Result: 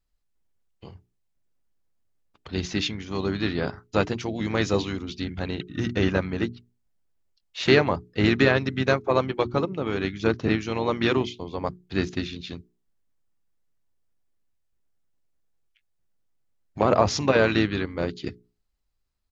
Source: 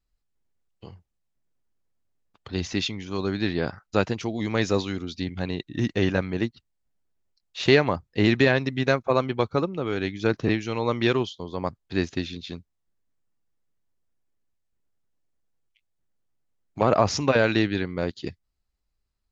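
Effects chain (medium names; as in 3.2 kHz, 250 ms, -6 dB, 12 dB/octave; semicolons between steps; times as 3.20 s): hum notches 60/120/180/240/300/360/420 Hz; harmony voices -7 st -15 dB, -4 st -11 dB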